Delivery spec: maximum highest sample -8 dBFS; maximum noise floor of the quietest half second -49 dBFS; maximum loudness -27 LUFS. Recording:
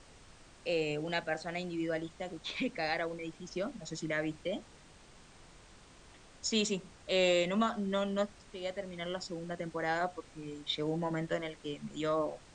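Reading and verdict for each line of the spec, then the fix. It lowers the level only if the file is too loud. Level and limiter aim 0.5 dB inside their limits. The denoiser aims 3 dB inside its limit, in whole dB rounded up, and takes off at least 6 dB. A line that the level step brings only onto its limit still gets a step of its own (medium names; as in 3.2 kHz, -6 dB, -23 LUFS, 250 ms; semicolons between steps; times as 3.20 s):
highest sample -17.5 dBFS: pass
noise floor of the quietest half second -57 dBFS: pass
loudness -35.5 LUFS: pass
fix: none needed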